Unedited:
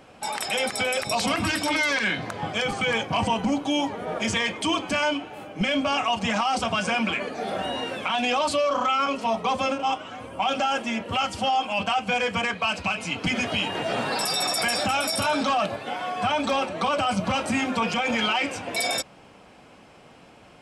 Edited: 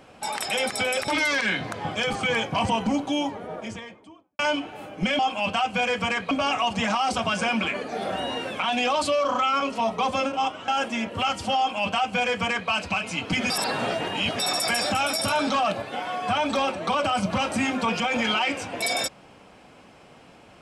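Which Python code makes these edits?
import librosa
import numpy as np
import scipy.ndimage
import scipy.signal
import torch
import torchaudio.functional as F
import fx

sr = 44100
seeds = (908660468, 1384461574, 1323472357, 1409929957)

y = fx.studio_fade_out(x, sr, start_s=3.44, length_s=1.53)
y = fx.edit(y, sr, fx.cut(start_s=1.08, length_s=0.58),
    fx.cut(start_s=10.14, length_s=0.48),
    fx.duplicate(start_s=11.52, length_s=1.12, to_s=5.77),
    fx.reverse_span(start_s=13.44, length_s=0.89), tone=tone)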